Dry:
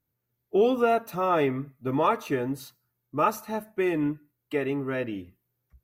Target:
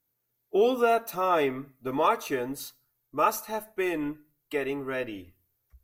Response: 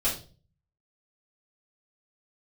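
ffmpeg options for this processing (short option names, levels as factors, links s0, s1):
-filter_complex "[0:a]bass=f=250:g=-8,treble=f=4000:g=6,asplit=2[s0][s1];[1:a]atrim=start_sample=2205[s2];[s1][s2]afir=irnorm=-1:irlink=0,volume=0.0335[s3];[s0][s3]amix=inputs=2:normalize=0,asubboost=boost=8:cutoff=57"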